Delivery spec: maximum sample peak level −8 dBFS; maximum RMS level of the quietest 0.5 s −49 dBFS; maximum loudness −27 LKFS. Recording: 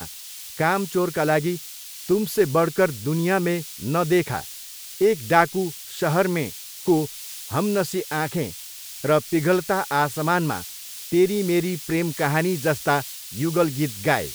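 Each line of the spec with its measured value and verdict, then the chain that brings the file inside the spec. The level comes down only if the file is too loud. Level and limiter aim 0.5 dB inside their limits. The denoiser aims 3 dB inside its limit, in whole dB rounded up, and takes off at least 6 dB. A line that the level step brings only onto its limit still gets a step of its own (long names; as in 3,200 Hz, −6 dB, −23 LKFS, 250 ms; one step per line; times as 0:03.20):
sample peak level −2.0 dBFS: out of spec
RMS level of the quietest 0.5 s −39 dBFS: out of spec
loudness −23.0 LKFS: out of spec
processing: broadband denoise 9 dB, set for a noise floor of −39 dBFS
level −4.5 dB
brickwall limiter −8.5 dBFS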